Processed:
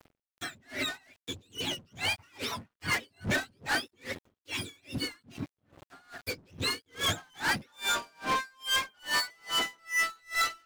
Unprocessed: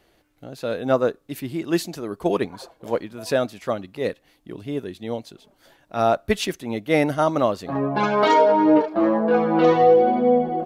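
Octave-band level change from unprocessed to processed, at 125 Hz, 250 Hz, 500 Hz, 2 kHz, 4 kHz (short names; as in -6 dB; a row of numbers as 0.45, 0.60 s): -11.0, -19.5, -24.0, +0.5, +4.0 dB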